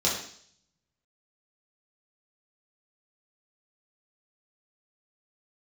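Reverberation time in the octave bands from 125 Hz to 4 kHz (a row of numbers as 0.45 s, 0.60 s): 0.90 s, 0.65 s, 0.60 s, 0.55 s, 0.60 s, 0.70 s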